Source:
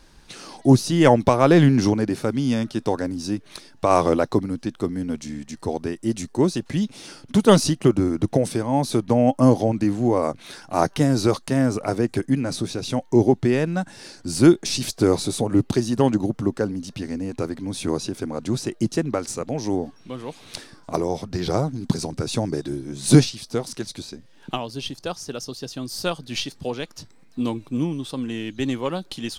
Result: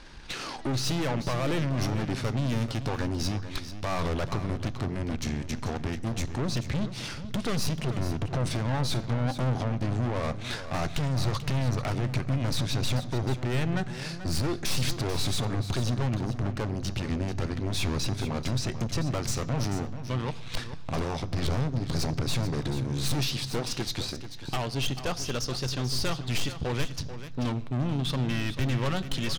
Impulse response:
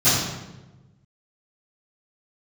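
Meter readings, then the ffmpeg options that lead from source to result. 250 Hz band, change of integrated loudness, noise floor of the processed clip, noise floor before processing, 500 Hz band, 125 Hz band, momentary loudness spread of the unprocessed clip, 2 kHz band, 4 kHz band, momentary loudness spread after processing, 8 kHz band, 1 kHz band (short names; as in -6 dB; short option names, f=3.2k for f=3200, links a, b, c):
-11.0 dB, -8.0 dB, -38 dBFS, -50 dBFS, -12.5 dB, -3.0 dB, 15 LU, -3.0 dB, -1.5 dB, 5 LU, -5.0 dB, -9.0 dB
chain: -filter_complex "[0:a]lowpass=2.4k,asubboost=boost=6.5:cutoff=110,alimiter=limit=-10.5dB:level=0:latency=1:release=32,acompressor=threshold=-22dB:ratio=6,crystalizer=i=6:c=0,aeval=exprs='(tanh(44.7*val(0)+0.65)-tanh(0.65))/44.7':c=same,aecho=1:1:438:0.266,asplit=2[a][b];[1:a]atrim=start_sample=2205[c];[b][c]afir=irnorm=-1:irlink=0,volume=-36.5dB[d];[a][d]amix=inputs=2:normalize=0,volume=6dB"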